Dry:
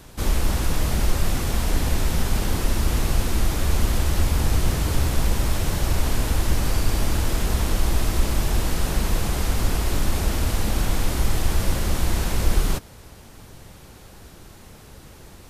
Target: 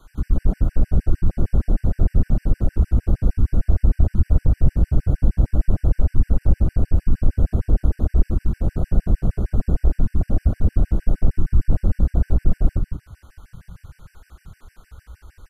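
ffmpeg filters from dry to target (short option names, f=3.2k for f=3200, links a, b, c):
-filter_complex "[0:a]acrossover=split=230|1200[a][b][c];[b]alimiter=level_in=9dB:limit=-24dB:level=0:latency=1:release=75,volume=-9dB[d];[c]acompressor=threshold=-46dB:ratio=16[e];[a][d][e]amix=inputs=3:normalize=0,equalizer=f=1.4k:t=o:w=0.86:g=11,aecho=1:1:72.89|180.8:0.316|0.562,acontrast=74,afwtdn=0.0891,afftfilt=real='re*gt(sin(2*PI*6.5*pts/sr)*(1-2*mod(floor(b*sr/1024/1500),2)),0)':imag='im*gt(sin(2*PI*6.5*pts/sr)*(1-2*mod(floor(b*sr/1024/1500),2)),0)':win_size=1024:overlap=0.75"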